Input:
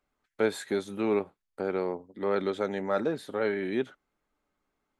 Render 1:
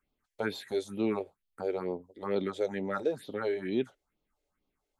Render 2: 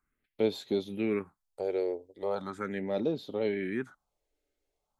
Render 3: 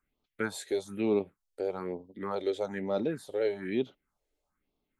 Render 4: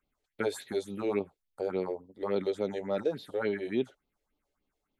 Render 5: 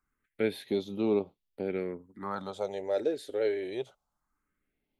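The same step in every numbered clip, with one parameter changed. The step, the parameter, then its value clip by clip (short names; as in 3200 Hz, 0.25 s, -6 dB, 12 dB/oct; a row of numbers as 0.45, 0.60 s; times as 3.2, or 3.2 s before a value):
phaser, rate: 2.2, 0.39, 1.1, 3.5, 0.23 Hz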